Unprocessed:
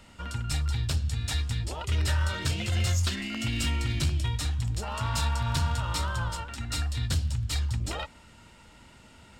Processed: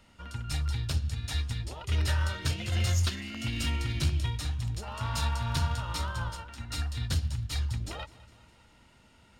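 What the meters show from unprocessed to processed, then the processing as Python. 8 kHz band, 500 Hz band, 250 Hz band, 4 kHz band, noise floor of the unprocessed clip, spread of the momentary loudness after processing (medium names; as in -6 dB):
-4.0 dB, -3.0 dB, -3.0 dB, -2.5 dB, -54 dBFS, 8 LU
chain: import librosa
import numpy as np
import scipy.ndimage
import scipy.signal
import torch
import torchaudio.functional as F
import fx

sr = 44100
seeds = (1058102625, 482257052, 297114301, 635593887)

y = fx.notch(x, sr, hz=7700.0, q=8.3)
y = fx.echo_feedback(y, sr, ms=205, feedback_pct=59, wet_db=-18.0)
y = fx.upward_expand(y, sr, threshold_db=-36.0, expansion=1.5)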